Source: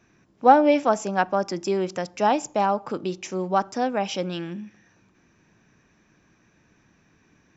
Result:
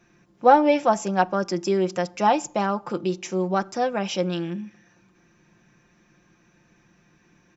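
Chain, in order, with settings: comb 5.7 ms, depth 56%

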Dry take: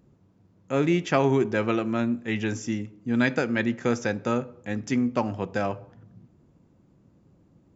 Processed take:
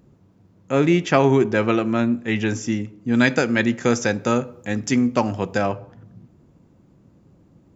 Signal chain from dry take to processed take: 3.12–5.58 s: treble shelf 6.1 kHz +11.5 dB; trim +5.5 dB

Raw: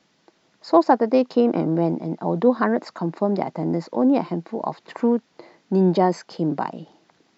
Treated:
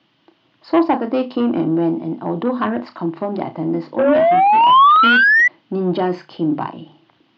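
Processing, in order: bass shelf 230 Hz +8 dB; hum notches 50/100/150/200/250 Hz; flutter echo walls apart 5.7 m, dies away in 0.2 s; painted sound rise, 3.98–5.48 s, 520–2000 Hz -10 dBFS; saturation -8 dBFS, distortion -16 dB; cabinet simulation 100–4300 Hz, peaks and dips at 110 Hz +8 dB, 190 Hz -7 dB, 320 Hz +5 dB, 450 Hz -7 dB, 1.1 kHz +4 dB, 3 kHz +10 dB

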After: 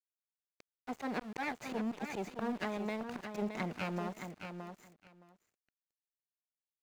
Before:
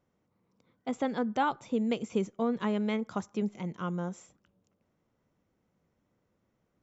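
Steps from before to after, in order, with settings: comb filter that takes the minimum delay 0.45 ms; high-pass 360 Hz 6 dB/octave; band-stop 520 Hz, Q 16; dynamic bell 800 Hz, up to +6 dB, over -52 dBFS, Q 1.7; in parallel at +1 dB: gain riding within 3 dB 0.5 s; on the sum: slow attack 265 ms; compression 20:1, threshold -40 dBFS, peak gain reduction 19 dB; small samples zeroed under -53 dBFS; treble shelf 5.7 kHz -11 dB; feedback delay 618 ms, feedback 15%, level -7.5 dB; trim +7 dB

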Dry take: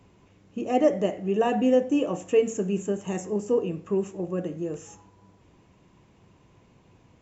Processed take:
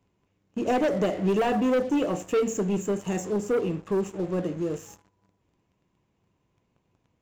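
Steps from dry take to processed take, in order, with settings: waveshaping leveller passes 3; 0.67–1.52 s: three bands compressed up and down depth 100%; trim -8.5 dB

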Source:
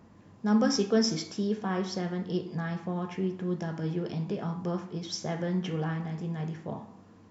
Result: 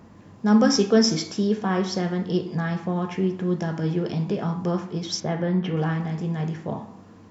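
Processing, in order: 5.20–5.77 s: distance through air 210 m; trim +7 dB

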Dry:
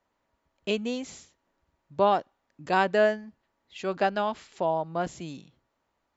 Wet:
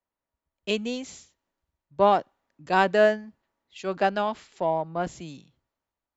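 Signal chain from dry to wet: in parallel at -12 dB: saturation -26 dBFS, distortion -7 dB; on the sum: three bands expanded up and down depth 40%

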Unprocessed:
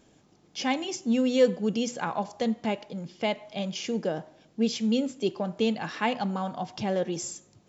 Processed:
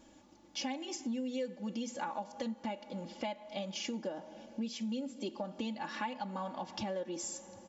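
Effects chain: peaking EQ 920 Hz +5.5 dB 0.34 oct; comb 3.5 ms, depth 84%; plate-style reverb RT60 4.7 s, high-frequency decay 0.75×, DRR 20 dB; compression 5:1, threshold -34 dBFS, peak gain reduction 19 dB; trim -2.5 dB

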